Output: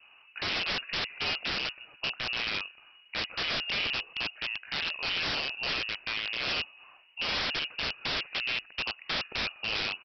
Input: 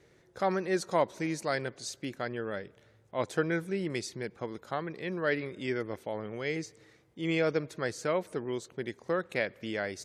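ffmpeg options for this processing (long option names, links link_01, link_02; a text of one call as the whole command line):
ffmpeg -i in.wav -af "lowpass=frequency=2600:width_type=q:width=0.5098,lowpass=frequency=2600:width_type=q:width=0.6013,lowpass=frequency=2600:width_type=q:width=0.9,lowpass=frequency=2600:width_type=q:width=2.563,afreqshift=-3000,acontrast=34,aresample=11025,aeval=exprs='(mod(18.8*val(0)+1,2)-1)/18.8':channel_layout=same,aresample=44100,adynamicequalizer=threshold=0.00251:dfrequency=930:dqfactor=2.4:tfrequency=930:tqfactor=2.4:attack=5:release=100:ratio=0.375:range=2.5:mode=cutabove:tftype=bell" out.wav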